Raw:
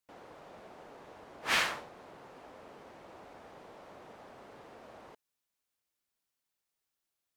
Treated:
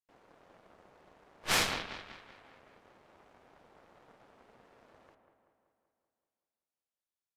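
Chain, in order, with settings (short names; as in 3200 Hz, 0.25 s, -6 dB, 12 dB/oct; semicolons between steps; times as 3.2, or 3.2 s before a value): dark delay 0.191 s, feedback 60%, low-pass 2100 Hz, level -5.5 dB; added harmonics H 7 -20 dB, 8 -11 dB, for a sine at -13 dBFS; downsampling 32000 Hz; gain -1.5 dB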